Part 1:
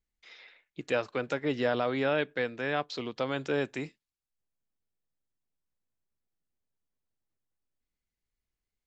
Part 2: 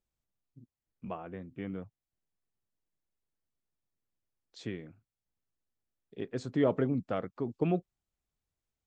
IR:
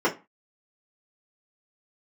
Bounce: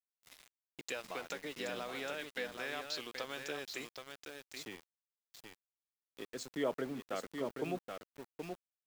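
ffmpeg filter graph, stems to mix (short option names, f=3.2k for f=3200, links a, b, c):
-filter_complex "[0:a]acompressor=threshold=-30dB:ratio=12,volume=-6dB,asplit=2[a][b];[b]volume=-6dB[c];[1:a]highpass=f=130:w=0.5412,highpass=f=130:w=1.3066,volume=-4.5dB,asplit=2[d][e];[e]volume=-5.5dB[f];[c][f]amix=inputs=2:normalize=0,aecho=0:1:776:1[g];[a][d][g]amix=inputs=3:normalize=0,aemphasis=mode=production:type=riaa,aeval=exprs='val(0)*gte(abs(val(0)),0.00422)':c=same"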